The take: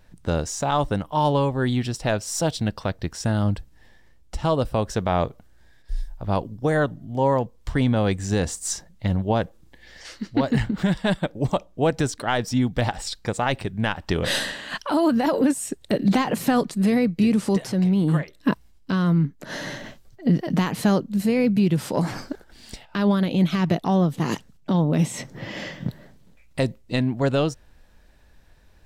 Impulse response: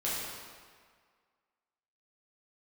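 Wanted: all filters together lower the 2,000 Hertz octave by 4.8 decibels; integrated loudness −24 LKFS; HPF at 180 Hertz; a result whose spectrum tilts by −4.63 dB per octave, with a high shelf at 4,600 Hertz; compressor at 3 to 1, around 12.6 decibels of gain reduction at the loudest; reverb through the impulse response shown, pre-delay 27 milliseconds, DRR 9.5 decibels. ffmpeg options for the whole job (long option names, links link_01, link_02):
-filter_complex "[0:a]highpass=180,equalizer=frequency=2000:width_type=o:gain=-7,highshelf=frequency=4600:gain=4,acompressor=threshold=-34dB:ratio=3,asplit=2[link_01][link_02];[1:a]atrim=start_sample=2205,adelay=27[link_03];[link_02][link_03]afir=irnorm=-1:irlink=0,volume=-16.5dB[link_04];[link_01][link_04]amix=inputs=2:normalize=0,volume=11.5dB"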